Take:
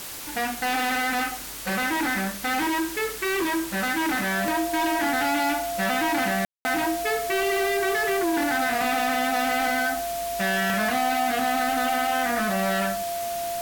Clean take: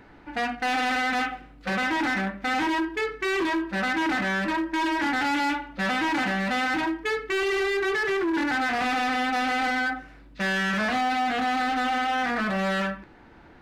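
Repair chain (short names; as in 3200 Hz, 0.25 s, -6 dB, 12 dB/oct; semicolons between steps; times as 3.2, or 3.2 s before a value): de-click; notch 690 Hz, Q 30; room tone fill 6.45–6.65; denoiser 14 dB, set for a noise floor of -32 dBFS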